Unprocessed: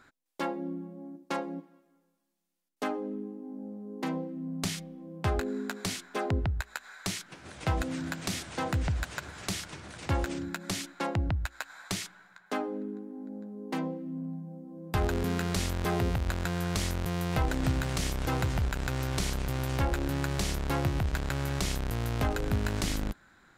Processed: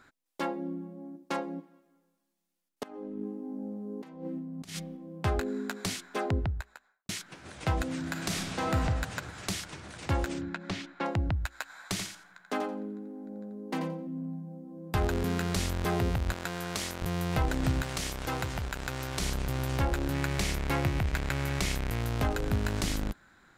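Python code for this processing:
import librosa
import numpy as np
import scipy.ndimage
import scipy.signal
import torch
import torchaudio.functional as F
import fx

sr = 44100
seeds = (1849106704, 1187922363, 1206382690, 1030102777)

y = fx.over_compress(x, sr, threshold_db=-38.0, ratio=-0.5, at=(2.83, 4.97))
y = fx.studio_fade_out(y, sr, start_s=6.29, length_s=0.8)
y = fx.reverb_throw(y, sr, start_s=8.05, length_s=0.7, rt60_s=1.7, drr_db=1.5)
y = fx.lowpass(y, sr, hz=3400.0, slope=12, at=(10.41, 11.06))
y = fx.echo_feedback(y, sr, ms=86, feedback_pct=19, wet_db=-7, at=(11.81, 14.07))
y = fx.highpass(y, sr, hz=340.0, slope=6, at=(16.33, 17.02))
y = fx.low_shelf(y, sr, hz=340.0, db=-7.0, at=(17.82, 19.21))
y = fx.peak_eq(y, sr, hz=2200.0, db=6.0, octaves=0.6, at=(20.14, 22.02))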